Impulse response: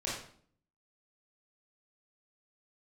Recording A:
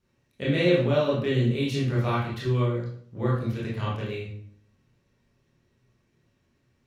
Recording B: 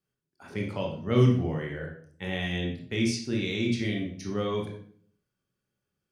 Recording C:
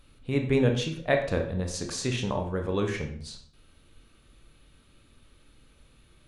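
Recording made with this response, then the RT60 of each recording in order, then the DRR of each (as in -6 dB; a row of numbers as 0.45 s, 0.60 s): A; 0.55 s, 0.55 s, 0.55 s; -7.0 dB, -0.5 dB, 3.5 dB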